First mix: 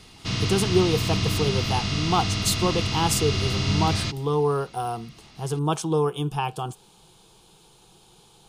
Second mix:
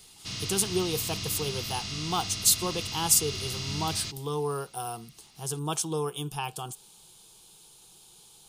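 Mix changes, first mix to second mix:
speech +5.5 dB
master: add first-order pre-emphasis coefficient 0.8

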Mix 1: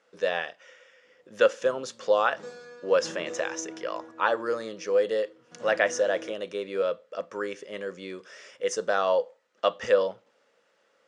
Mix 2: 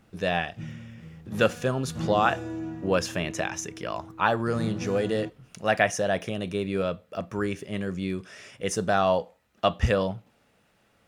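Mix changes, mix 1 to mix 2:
background: entry −1.05 s
master: remove loudspeaker in its box 480–7,300 Hz, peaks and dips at 510 Hz +9 dB, 740 Hz −7 dB, 2,500 Hz −5 dB, 3,900 Hz −3 dB

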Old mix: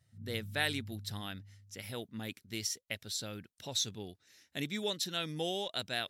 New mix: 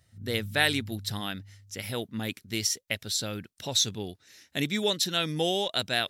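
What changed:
speech +8.5 dB
background: remove resonant band-pass 170 Hz, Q 1.3

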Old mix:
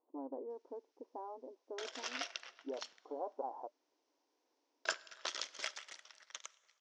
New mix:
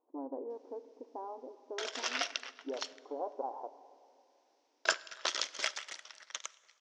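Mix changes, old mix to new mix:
speech: send on
background +7.0 dB

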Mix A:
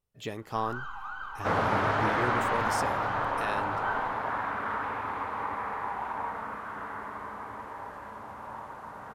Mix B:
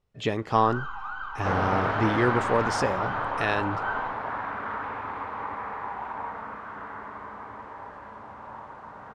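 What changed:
speech +10.0 dB
first sound +4.0 dB
master: add high-frequency loss of the air 97 metres

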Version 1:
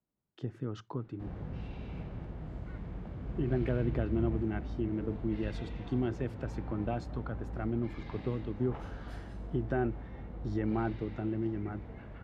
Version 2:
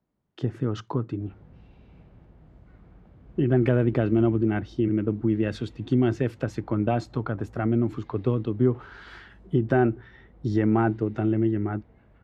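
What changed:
speech +10.5 dB
background −10.5 dB

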